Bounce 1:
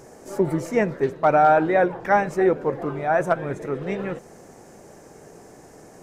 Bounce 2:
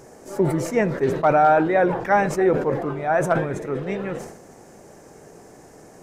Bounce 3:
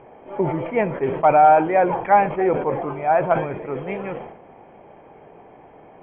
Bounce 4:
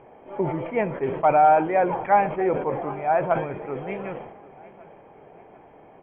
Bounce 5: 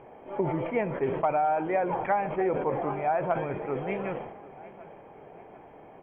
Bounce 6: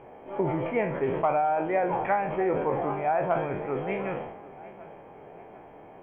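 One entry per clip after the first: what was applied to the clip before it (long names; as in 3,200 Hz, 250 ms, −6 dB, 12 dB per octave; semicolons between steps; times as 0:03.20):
level that may fall only so fast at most 72 dB per second
Chebyshev low-pass with heavy ripple 3,300 Hz, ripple 9 dB; level +5.5 dB
repeating echo 747 ms, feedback 45%, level −21.5 dB; level −3.5 dB
downward compressor 6 to 1, threshold −23 dBFS, peak gain reduction 10.5 dB
peak hold with a decay on every bin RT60 0.40 s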